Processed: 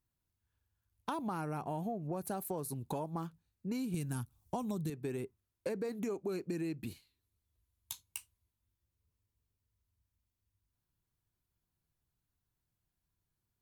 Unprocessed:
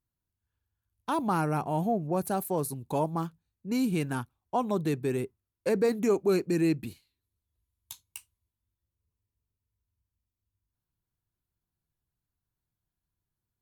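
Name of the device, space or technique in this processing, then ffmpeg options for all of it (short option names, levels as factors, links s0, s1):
serial compression, leveller first: -filter_complex "[0:a]asettb=1/sr,asplit=3[s0][s1][s2];[s0]atrim=end=3.944[s3];[s1]atrim=start=3.94:end=4.9,asetpts=PTS-STARTPTS,afade=t=in:d=0.004:c=qsin,afade=t=out:st=0.956:d=0.004:c=qsin,bass=f=250:g=12,treble=f=4000:g=14[s4];[s2]atrim=start=4.896[s5];[s3][s4]acrossfade=d=0.004:c1=hsin:c2=qsin[s6];[s6][s5]acrossfade=d=0.004:c1=qsin:c2=hsin,acompressor=threshold=0.0251:ratio=1.5,acompressor=threshold=0.0158:ratio=6,volume=1.12"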